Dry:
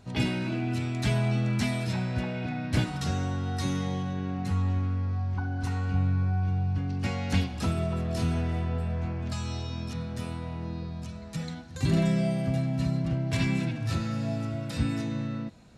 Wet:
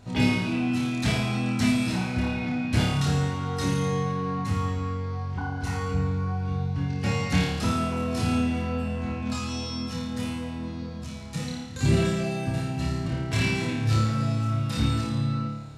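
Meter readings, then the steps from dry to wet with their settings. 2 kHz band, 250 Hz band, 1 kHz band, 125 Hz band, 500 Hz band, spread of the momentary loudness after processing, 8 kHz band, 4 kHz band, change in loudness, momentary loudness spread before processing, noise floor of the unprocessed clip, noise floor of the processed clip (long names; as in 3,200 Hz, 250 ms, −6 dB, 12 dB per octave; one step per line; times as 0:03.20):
+5.0 dB, +3.5 dB, +5.5 dB, +1.5 dB, +3.5 dB, 8 LU, +6.0 dB, +5.5 dB, +2.5 dB, 8 LU, −39 dBFS, −35 dBFS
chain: flutter between parallel walls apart 4.8 metres, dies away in 0.86 s
in parallel at −10 dB: soft clipping −26 dBFS, distortion −10 dB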